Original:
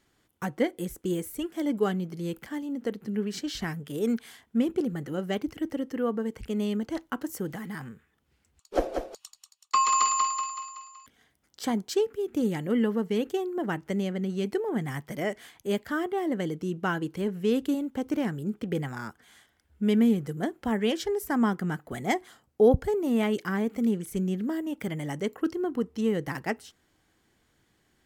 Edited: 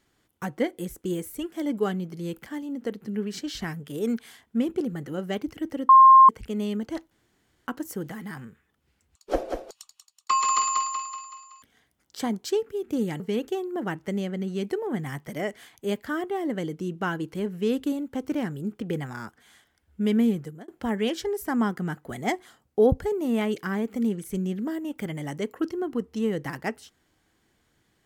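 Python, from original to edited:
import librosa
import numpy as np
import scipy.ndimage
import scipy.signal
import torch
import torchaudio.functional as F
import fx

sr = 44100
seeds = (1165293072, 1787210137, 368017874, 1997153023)

y = fx.edit(x, sr, fx.bleep(start_s=5.89, length_s=0.4, hz=1060.0, db=-8.5),
    fx.insert_room_tone(at_s=7.11, length_s=0.56),
    fx.cut(start_s=12.64, length_s=0.38),
    fx.fade_out_span(start_s=20.18, length_s=0.32), tone=tone)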